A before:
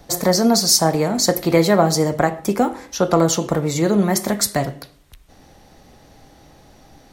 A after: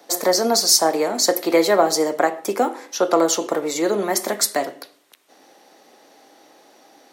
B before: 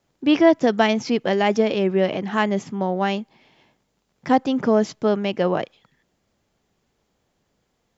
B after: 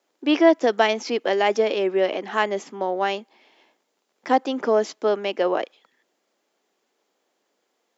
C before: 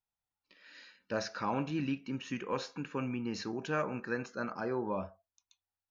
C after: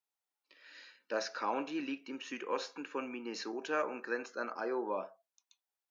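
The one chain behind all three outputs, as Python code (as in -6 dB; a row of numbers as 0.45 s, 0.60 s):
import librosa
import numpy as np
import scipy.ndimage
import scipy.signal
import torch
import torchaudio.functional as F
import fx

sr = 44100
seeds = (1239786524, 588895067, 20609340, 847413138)

y = scipy.signal.sosfilt(scipy.signal.butter(4, 300.0, 'highpass', fs=sr, output='sos'), x)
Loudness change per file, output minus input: -1.0 LU, -1.5 LU, -1.5 LU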